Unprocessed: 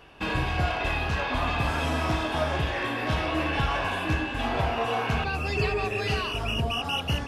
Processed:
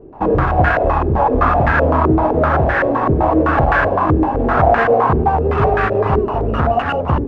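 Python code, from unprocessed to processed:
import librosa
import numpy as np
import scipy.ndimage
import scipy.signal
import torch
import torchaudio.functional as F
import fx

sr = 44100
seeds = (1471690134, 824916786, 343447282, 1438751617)

y = fx.halfwave_hold(x, sr)
y = fx.hum_notches(y, sr, base_hz=60, count=7)
y = fx.filter_held_lowpass(y, sr, hz=7.8, low_hz=380.0, high_hz=1600.0)
y = F.gain(torch.from_numpy(y), 6.0).numpy()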